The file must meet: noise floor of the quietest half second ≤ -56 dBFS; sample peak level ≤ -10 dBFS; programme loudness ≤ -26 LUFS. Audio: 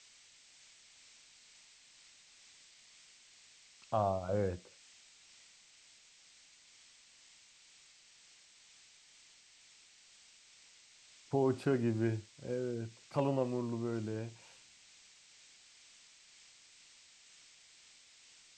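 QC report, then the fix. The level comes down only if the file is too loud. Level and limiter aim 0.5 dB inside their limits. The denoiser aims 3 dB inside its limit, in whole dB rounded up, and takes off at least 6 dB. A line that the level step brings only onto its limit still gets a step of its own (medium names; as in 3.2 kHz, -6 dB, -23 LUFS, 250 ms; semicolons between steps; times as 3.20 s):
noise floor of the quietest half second -62 dBFS: pass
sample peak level -19.5 dBFS: pass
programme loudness -36.0 LUFS: pass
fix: none needed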